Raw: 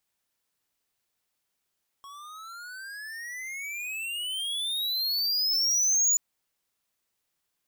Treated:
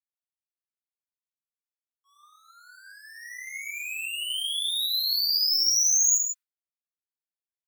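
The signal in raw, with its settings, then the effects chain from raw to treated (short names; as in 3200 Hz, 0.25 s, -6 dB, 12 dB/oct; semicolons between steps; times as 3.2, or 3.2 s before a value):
gliding synth tone square, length 4.13 s, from 1100 Hz, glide +32 st, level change +24 dB, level -21 dB
steep high-pass 1000 Hz 72 dB/oct; expander -33 dBFS; non-linear reverb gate 0.18 s flat, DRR 1 dB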